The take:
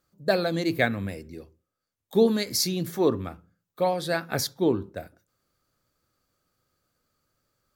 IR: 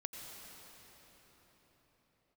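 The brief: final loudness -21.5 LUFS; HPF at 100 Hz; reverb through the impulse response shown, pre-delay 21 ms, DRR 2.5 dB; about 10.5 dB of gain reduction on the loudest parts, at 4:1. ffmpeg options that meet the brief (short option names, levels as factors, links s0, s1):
-filter_complex "[0:a]highpass=100,acompressor=threshold=0.0398:ratio=4,asplit=2[s0][s1];[1:a]atrim=start_sample=2205,adelay=21[s2];[s1][s2]afir=irnorm=-1:irlink=0,volume=0.891[s3];[s0][s3]amix=inputs=2:normalize=0,volume=3.35"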